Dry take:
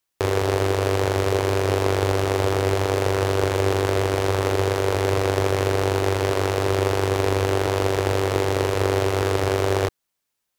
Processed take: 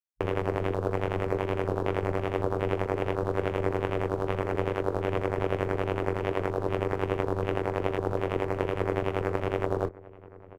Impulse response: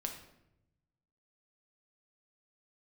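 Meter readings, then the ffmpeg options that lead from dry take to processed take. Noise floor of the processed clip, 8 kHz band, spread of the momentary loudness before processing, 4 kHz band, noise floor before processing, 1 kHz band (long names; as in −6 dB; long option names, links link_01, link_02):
−49 dBFS, below −20 dB, 1 LU, −16.0 dB, −79 dBFS, −7.5 dB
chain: -filter_complex "[0:a]afwtdn=0.0355,asplit=2[link_01][link_02];[link_02]adelay=1050,volume=-19dB,highshelf=frequency=4000:gain=-23.6[link_03];[link_01][link_03]amix=inputs=2:normalize=0,tremolo=f=86:d=0.857,volume=-3.5dB"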